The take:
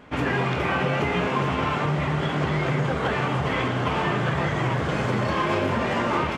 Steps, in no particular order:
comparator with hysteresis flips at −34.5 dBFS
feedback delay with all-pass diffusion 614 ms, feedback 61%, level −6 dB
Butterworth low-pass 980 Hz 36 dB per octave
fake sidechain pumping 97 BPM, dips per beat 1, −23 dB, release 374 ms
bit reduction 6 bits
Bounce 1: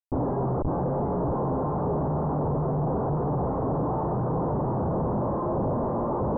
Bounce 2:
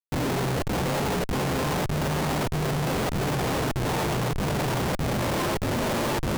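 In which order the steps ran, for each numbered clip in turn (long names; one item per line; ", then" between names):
fake sidechain pumping, then bit reduction, then feedback delay with all-pass diffusion, then comparator with hysteresis, then Butterworth low-pass
Butterworth low-pass, then bit reduction, then feedback delay with all-pass diffusion, then fake sidechain pumping, then comparator with hysteresis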